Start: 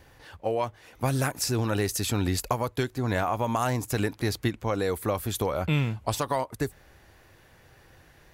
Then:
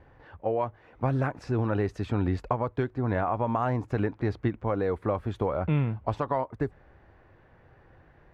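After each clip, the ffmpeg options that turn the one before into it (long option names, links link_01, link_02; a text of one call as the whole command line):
ffmpeg -i in.wav -af "lowpass=1500" out.wav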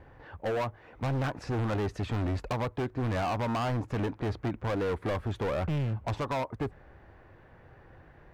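ffmpeg -i in.wav -af "volume=30dB,asoftclip=hard,volume=-30dB,volume=2.5dB" out.wav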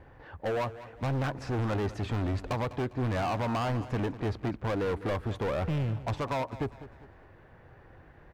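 ffmpeg -i in.wav -af "aecho=1:1:201|402|603|804:0.168|0.0672|0.0269|0.0107" out.wav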